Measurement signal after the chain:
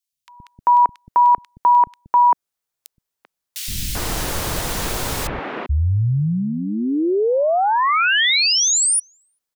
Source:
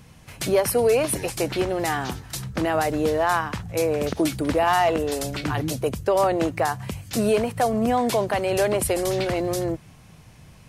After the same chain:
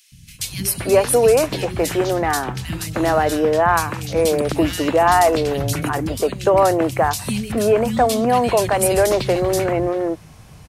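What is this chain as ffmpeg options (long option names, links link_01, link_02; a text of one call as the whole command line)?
ffmpeg -i in.wav -filter_complex "[0:a]acrossover=split=220|2500[link_01][link_02][link_03];[link_01]adelay=120[link_04];[link_02]adelay=390[link_05];[link_04][link_05][link_03]amix=inputs=3:normalize=0,volume=6dB" out.wav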